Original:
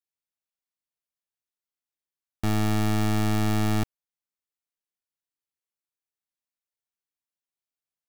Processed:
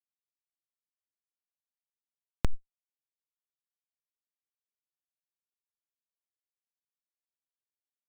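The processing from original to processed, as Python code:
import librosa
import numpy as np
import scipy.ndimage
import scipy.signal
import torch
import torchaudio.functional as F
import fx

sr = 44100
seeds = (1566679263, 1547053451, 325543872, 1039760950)

y = fx.peak_eq(x, sr, hz=180.0, db=-12.5, octaves=0.58)
y = fx.schmitt(y, sr, flips_db=-20.5)
y = fx.env_flatten(y, sr, amount_pct=100)
y = y * 10.0 ** (18.0 / 20.0)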